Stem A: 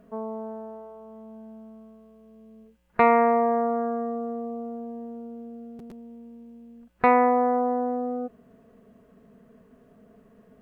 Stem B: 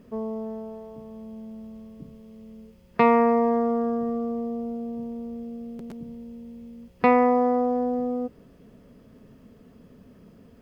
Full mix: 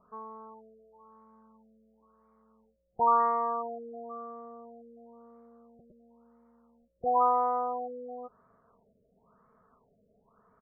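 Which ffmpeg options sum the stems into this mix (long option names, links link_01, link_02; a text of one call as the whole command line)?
ffmpeg -i stem1.wav -i stem2.wav -filter_complex "[0:a]equalizer=frequency=100:width_type=o:width=0.67:gain=4,equalizer=frequency=250:width_type=o:width=0.67:gain=-7,equalizer=frequency=1000:width_type=o:width=0.67:gain=-6,equalizer=frequency=2500:width_type=o:width=0.67:gain=-4,volume=-12dB[link_01];[1:a]highpass=frequency=880:width=0.5412,highpass=frequency=880:width=1.3066,adelay=2.6,volume=-1dB[link_02];[link_01][link_02]amix=inputs=2:normalize=0,highshelf=frequency=1600:width_type=q:width=3:gain=-8.5,afftfilt=real='re*lt(b*sr/1024,640*pow(2400/640,0.5+0.5*sin(2*PI*0.97*pts/sr)))':imag='im*lt(b*sr/1024,640*pow(2400/640,0.5+0.5*sin(2*PI*0.97*pts/sr)))':win_size=1024:overlap=0.75" out.wav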